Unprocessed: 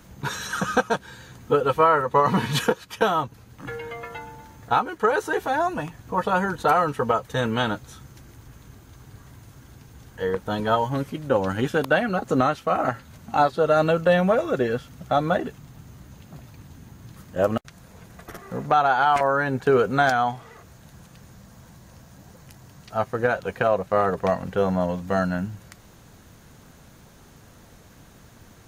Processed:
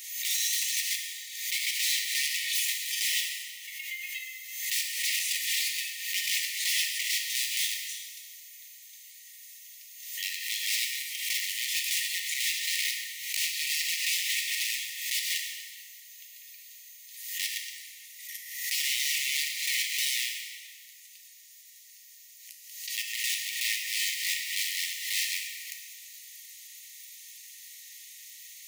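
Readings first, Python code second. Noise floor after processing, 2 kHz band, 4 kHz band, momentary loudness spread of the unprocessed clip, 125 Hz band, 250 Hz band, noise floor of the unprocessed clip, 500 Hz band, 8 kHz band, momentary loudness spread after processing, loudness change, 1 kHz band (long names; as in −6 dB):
−52 dBFS, −3.0 dB, +8.5 dB, 15 LU, below −40 dB, below −40 dB, −50 dBFS, below −40 dB, can't be measured, 19 LU, −5.5 dB, below −40 dB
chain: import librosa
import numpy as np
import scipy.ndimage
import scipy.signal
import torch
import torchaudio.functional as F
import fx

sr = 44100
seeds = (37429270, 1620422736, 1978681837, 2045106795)

y = fx.tilt_eq(x, sr, slope=3.0)
y = fx.rider(y, sr, range_db=3, speed_s=0.5)
y = fx.quant_float(y, sr, bits=2)
y = (np.mod(10.0 ** (20.5 / 20.0) * y + 1.0, 2.0) - 1.0) / 10.0 ** (20.5 / 20.0)
y = fx.brickwall_highpass(y, sr, low_hz=1800.0)
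y = fx.rev_plate(y, sr, seeds[0], rt60_s=2.0, hf_ratio=0.75, predelay_ms=0, drr_db=0.0)
y = fx.pre_swell(y, sr, db_per_s=56.0)
y = y * librosa.db_to_amplitude(-2.5)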